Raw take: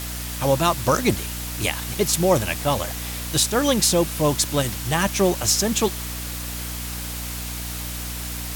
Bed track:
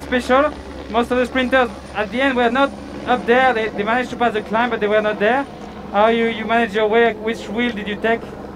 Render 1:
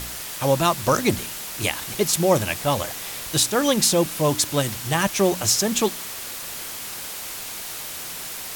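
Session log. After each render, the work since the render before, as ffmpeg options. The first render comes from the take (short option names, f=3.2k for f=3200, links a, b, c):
-af "bandreject=f=60:t=h:w=4,bandreject=f=120:t=h:w=4,bandreject=f=180:t=h:w=4,bandreject=f=240:t=h:w=4,bandreject=f=300:t=h:w=4"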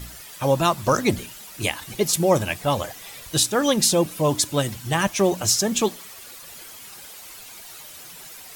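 -af "afftdn=nr=11:nf=-34"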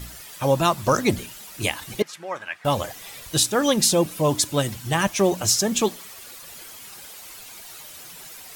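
-filter_complex "[0:a]asettb=1/sr,asplit=3[a][b][c];[a]atrim=end=2.024[d];[b]atrim=start=2.02:end=2.65,asetpts=PTS-STARTPTS,afade=t=in:d=0.004:c=qsin,afade=t=out:st=0.626:d=0.004:c=qsin,bandpass=f=1.6k:t=q:w=2[e];[c]atrim=start=2.646[f];[d][e]acrossfade=d=0.004:c1=hsin:c2=qsin[g];[g][f]acrossfade=d=0.004:c1=qsin:c2=hsin"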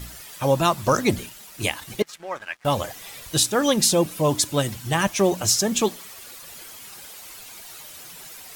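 -filter_complex "[0:a]asettb=1/sr,asplit=3[a][b][c];[a]atrim=end=1.294[d];[b]atrim=start=1.29:end=2.72,asetpts=PTS-STARTPTS,afade=t=in:d=0.004:c=qsin,afade=t=out:st=1.426:d=0.004:c=qsin,aeval=exprs='sgn(val(0))*max(abs(val(0))-0.00316,0)':c=same[e];[c]atrim=start=2.716[f];[d][e]acrossfade=d=0.004:c1=hsin:c2=qsin[g];[g][f]acrossfade=d=0.004:c1=qsin:c2=hsin"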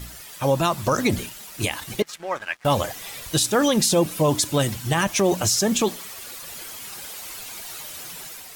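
-af "dynaudnorm=f=510:g=3:m=5dB,alimiter=limit=-10.5dB:level=0:latency=1:release=41"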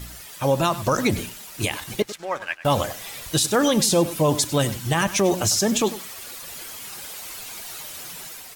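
-filter_complex "[0:a]asplit=2[a][b];[b]adelay=99.13,volume=-15dB,highshelf=f=4k:g=-2.23[c];[a][c]amix=inputs=2:normalize=0"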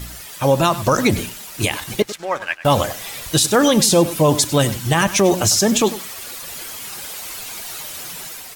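-af "volume=5dB"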